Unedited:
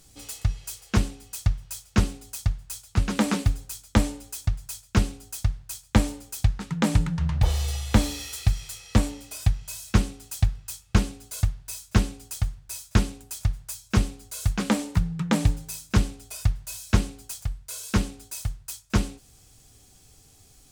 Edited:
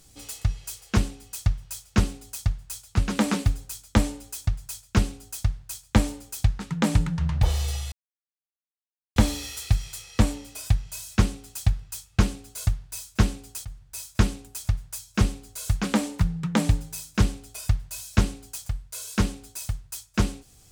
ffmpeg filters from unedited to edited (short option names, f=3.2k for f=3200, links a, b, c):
-filter_complex "[0:a]asplit=3[a][b][c];[a]atrim=end=7.92,asetpts=PTS-STARTPTS,afade=t=out:st=7.916:d=0.004:c=hsin,apad=pad_dur=1.24[d];[b]atrim=start=7.92:end=12.41,asetpts=PTS-STARTPTS,afade=t=in:d=0.004:c=hsin,afade=t=out:st=4.486:d=0.004:c=hsin:silence=0.16788[e];[c]atrim=start=12.41,asetpts=PTS-STARTPTS,afade=t=in:d=0.35:silence=0.16788[f];[d][e][f]concat=n=3:v=0:a=1"